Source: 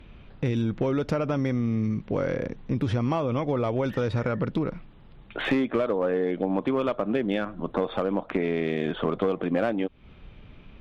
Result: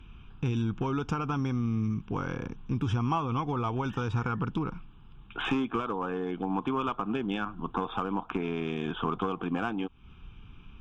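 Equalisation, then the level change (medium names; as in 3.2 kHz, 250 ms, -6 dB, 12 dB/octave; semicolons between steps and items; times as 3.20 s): peaking EQ 230 Hz -2.5 dB 2.2 oct; dynamic bell 800 Hz, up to +6 dB, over -41 dBFS, Q 1.3; static phaser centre 2.9 kHz, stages 8; 0.0 dB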